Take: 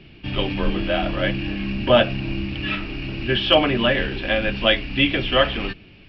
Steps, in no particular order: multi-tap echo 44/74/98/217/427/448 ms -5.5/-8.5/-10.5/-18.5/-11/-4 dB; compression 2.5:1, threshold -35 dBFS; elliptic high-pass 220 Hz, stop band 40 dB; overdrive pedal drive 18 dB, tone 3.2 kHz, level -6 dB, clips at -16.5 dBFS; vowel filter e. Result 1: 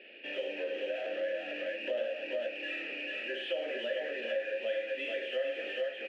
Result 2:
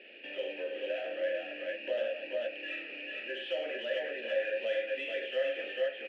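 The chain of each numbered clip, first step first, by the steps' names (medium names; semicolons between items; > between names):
multi-tap echo > overdrive pedal > vowel filter > compression > elliptic high-pass; multi-tap echo > compression > elliptic high-pass > overdrive pedal > vowel filter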